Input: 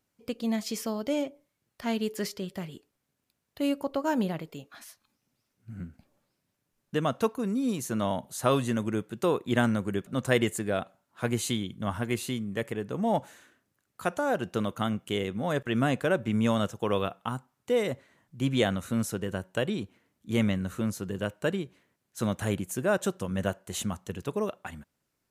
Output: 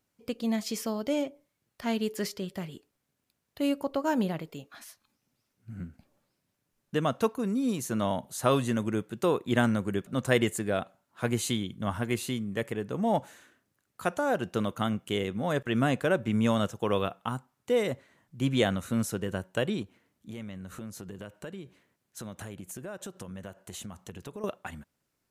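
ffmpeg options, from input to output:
ffmpeg -i in.wav -filter_complex "[0:a]asettb=1/sr,asplit=3[link_01][link_02][link_03];[link_01]atrim=end=19.824[link_04];[link_02]atrim=start=19.82:end=24.44,asetpts=PTS-STARTPTS,afade=type=in:duration=0.004:curve=qsin,afade=type=out:start_time=4.616:duration=0.004:curve=qsin,acompressor=threshold=-38dB:ratio=5:attack=3.2:release=140:knee=1:detection=peak[link_05];[link_03]atrim=start=24.436[link_06];[link_04][link_05]acrossfade=duration=0.004:curve1=hsin:curve2=qsin[link_07];[link_07][link_06]acrossfade=duration=0.004:curve1=qsin:curve2=hsin" out.wav

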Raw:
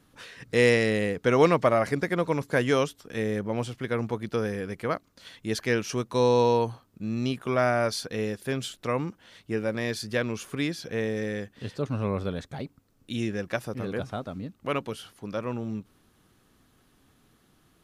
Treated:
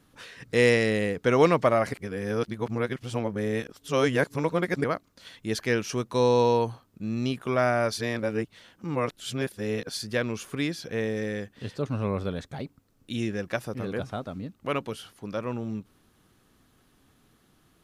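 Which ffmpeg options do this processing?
ffmpeg -i in.wav -filter_complex "[0:a]asplit=5[link_01][link_02][link_03][link_04][link_05];[link_01]atrim=end=1.932[link_06];[link_02]atrim=start=1.928:end=4.842,asetpts=PTS-STARTPTS,areverse[link_07];[link_03]atrim=start=4.838:end=7.972[link_08];[link_04]atrim=start=7.968:end=9.972,asetpts=PTS-STARTPTS,areverse[link_09];[link_05]atrim=start=9.968[link_10];[link_06][link_07]acrossfade=duration=0.004:curve1=hsin:curve2=hsin[link_11];[link_11][link_08]acrossfade=duration=0.004:curve1=hsin:curve2=hsin[link_12];[link_12][link_09]acrossfade=duration=0.004:curve1=hsin:curve2=hsin[link_13];[link_13][link_10]acrossfade=duration=0.004:curve1=hsin:curve2=hsin" out.wav

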